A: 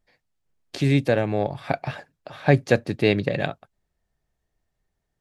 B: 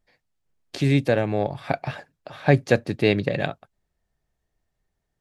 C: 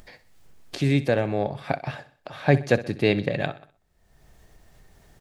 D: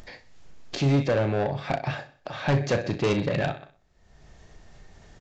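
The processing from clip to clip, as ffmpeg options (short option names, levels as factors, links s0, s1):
-af anull
-af "acompressor=mode=upward:threshold=0.0282:ratio=2.5,aecho=1:1:63|126|189|252:0.158|0.0682|0.0293|0.0126,volume=0.841"
-filter_complex "[0:a]aresample=16000,asoftclip=type=tanh:threshold=0.0794,aresample=44100,asplit=2[s0][s1];[s1]adelay=36,volume=0.335[s2];[s0][s2]amix=inputs=2:normalize=0,volume=1.5"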